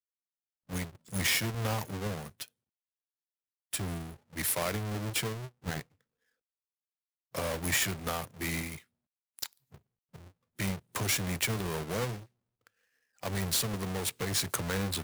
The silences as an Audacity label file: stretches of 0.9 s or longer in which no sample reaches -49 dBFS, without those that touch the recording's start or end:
2.480000	3.730000	silence
5.820000	7.350000	silence